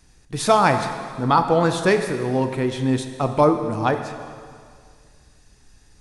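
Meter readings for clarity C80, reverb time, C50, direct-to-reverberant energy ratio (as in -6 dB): 8.5 dB, 2.1 s, 8.0 dB, 6.5 dB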